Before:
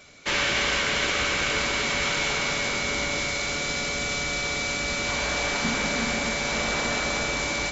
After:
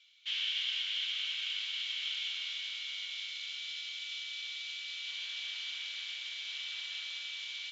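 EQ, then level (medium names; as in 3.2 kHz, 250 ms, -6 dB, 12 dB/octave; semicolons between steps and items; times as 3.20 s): ladder band-pass 3.4 kHz, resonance 75%; distance through air 70 m; -1.5 dB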